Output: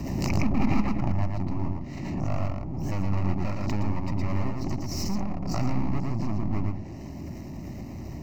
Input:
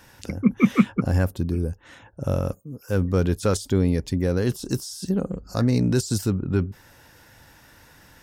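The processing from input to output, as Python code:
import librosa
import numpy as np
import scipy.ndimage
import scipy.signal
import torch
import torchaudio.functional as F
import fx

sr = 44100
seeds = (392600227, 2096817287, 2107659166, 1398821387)

p1 = fx.pitch_ramps(x, sr, semitones=2.0, every_ms=182)
p2 = fx.env_lowpass_down(p1, sr, base_hz=1300.0, full_db=-21.0)
p3 = fx.low_shelf(p2, sr, hz=71.0, db=-8.0)
p4 = np.maximum(p3, 0.0)
p5 = fx.dmg_noise_band(p4, sr, seeds[0], low_hz=46.0, high_hz=470.0, level_db=-40.0)
p6 = 10.0 ** (-24.0 / 20.0) * (np.abs((p5 / 10.0 ** (-24.0 / 20.0) + 3.0) % 4.0 - 2.0) - 1.0)
p7 = p5 + F.gain(torch.from_numpy(p6), -5.0).numpy()
p8 = fx.fixed_phaser(p7, sr, hz=2300.0, stages=8)
p9 = p8 + fx.echo_single(p8, sr, ms=114, db=-3.5, dry=0)
y = fx.pre_swell(p9, sr, db_per_s=30.0)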